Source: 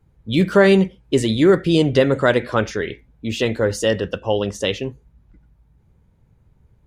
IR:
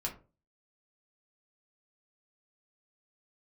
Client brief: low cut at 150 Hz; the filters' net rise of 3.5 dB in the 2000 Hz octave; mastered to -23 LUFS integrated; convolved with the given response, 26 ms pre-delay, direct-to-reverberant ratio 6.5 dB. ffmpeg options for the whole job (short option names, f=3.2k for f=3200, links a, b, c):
-filter_complex "[0:a]highpass=150,equalizer=f=2k:t=o:g=4.5,asplit=2[a][b];[1:a]atrim=start_sample=2205,adelay=26[c];[b][c]afir=irnorm=-1:irlink=0,volume=-8dB[d];[a][d]amix=inputs=2:normalize=0,volume=-5.5dB"